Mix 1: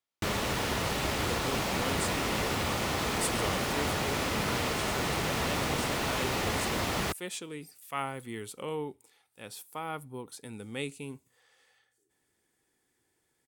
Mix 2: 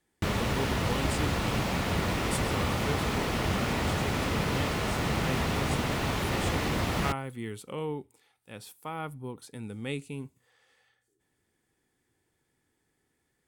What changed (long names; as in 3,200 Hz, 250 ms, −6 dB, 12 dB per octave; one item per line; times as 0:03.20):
speech: entry −0.90 s
master: add bass and treble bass +6 dB, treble −4 dB